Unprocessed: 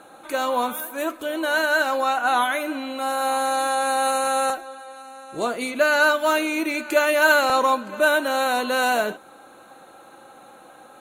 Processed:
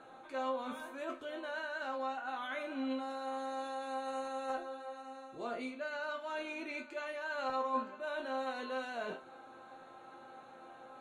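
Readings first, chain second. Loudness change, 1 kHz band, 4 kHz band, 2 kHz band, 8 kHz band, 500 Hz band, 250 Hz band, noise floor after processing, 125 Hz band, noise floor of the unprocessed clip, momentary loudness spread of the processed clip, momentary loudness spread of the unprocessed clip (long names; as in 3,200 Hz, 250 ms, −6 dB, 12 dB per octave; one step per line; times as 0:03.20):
−18.5 dB, −17.5 dB, −20.0 dB, −21.0 dB, −28.5 dB, −17.0 dB, −14.0 dB, −55 dBFS, can't be measured, −48 dBFS, 16 LU, 11 LU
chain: reversed playback
downward compressor 10 to 1, threshold −29 dBFS, peak gain reduction 17 dB
reversed playback
high-frequency loss of the air 110 metres
resonators tuned to a chord F2 sus4, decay 0.24 s
level +4 dB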